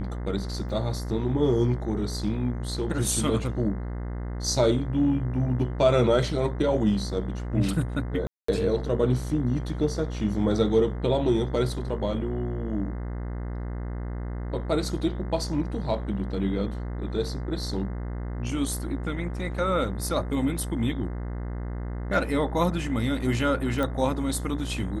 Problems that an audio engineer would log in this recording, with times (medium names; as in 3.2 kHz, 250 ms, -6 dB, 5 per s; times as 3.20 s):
buzz 60 Hz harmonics 35 -32 dBFS
0.69 s: dropout 3.4 ms
8.27–8.48 s: dropout 214 ms
23.83 s: pop -16 dBFS